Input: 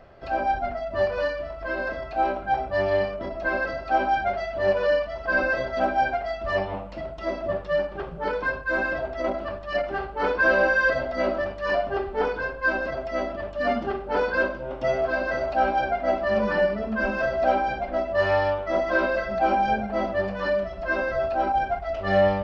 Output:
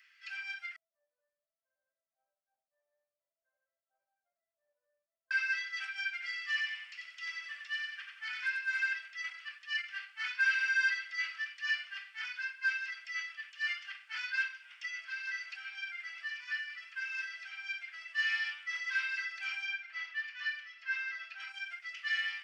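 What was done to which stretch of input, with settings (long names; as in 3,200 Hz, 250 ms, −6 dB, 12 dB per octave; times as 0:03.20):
0:00.76–0:05.31: Chebyshev band-pass filter 100–560 Hz, order 4
0:06.13–0:08.93: repeating echo 91 ms, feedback 37%, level −4 dB
0:14.85–0:18.02: downward compressor, threshold −24 dBFS
0:19.65–0:21.40: high-frequency loss of the air 100 metres
whole clip: Butterworth high-pass 1,900 Hz 36 dB per octave; parametric band 3,900 Hz −9 dB 0.36 octaves; level +3 dB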